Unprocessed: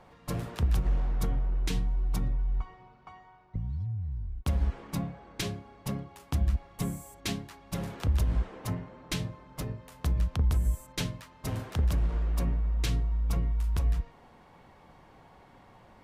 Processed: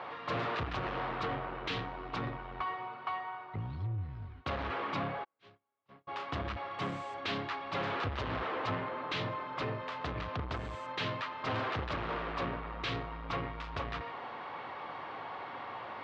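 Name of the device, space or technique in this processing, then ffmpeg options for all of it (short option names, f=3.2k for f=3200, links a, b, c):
overdrive pedal into a guitar cabinet: -filter_complex "[0:a]asplit=2[a][b];[b]highpass=f=720:p=1,volume=31dB,asoftclip=type=tanh:threshold=-17.5dB[c];[a][c]amix=inputs=2:normalize=0,lowpass=f=6.9k:p=1,volume=-6dB,highpass=100,equalizer=f=100:t=q:w=4:g=5,equalizer=f=190:t=q:w=4:g=-8,equalizer=f=1.2k:t=q:w=4:g=5,lowpass=f=3.9k:w=0.5412,lowpass=f=3.9k:w=1.3066,asplit=3[d][e][f];[d]afade=t=out:st=5.23:d=0.02[g];[e]agate=range=-47dB:threshold=-22dB:ratio=16:detection=peak,afade=t=in:st=5.23:d=0.02,afade=t=out:st=6.07:d=0.02[h];[f]afade=t=in:st=6.07:d=0.02[i];[g][h][i]amix=inputs=3:normalize=0,volume=-8.5dB"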